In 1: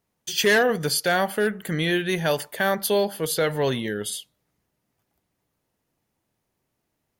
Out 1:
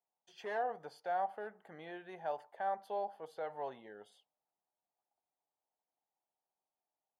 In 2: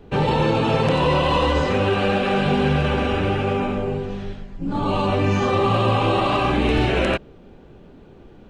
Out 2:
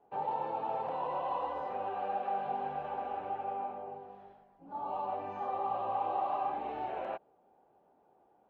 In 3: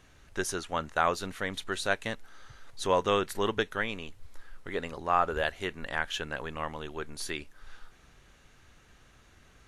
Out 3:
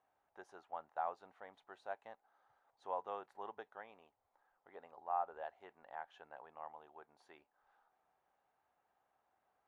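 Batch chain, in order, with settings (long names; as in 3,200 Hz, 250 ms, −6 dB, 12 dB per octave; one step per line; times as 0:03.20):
resonant band-pass 790 Hz, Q 4.6
level −6.5 dB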